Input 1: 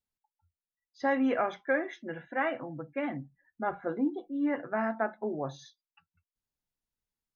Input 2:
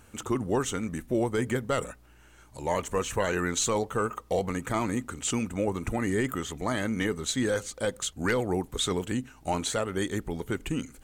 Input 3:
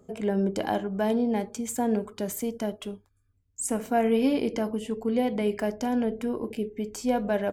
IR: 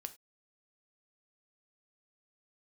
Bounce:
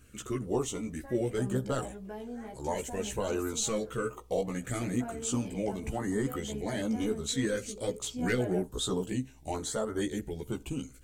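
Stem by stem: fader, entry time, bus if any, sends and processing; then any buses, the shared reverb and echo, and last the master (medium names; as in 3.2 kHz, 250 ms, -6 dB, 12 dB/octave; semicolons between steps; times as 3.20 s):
-12.5 dB, 0.00 s, bus A, no send, none
-3.0 dB, 0.00 s, no bus, send -4.5 dB, step-sequenced notch 2.2 Hz 850–2500 Hz
-7.5 dB, 1.10 s, bus A, send -9.5 dB, none
bus A: 0.0 dB, compression 3:1, threshold -43 dBFS, peak gain reduction 12.5 dB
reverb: on, pre-delay 3 ms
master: chorus voices 2, 0.3 Hz, delay 15 ms, depth 1.5 ms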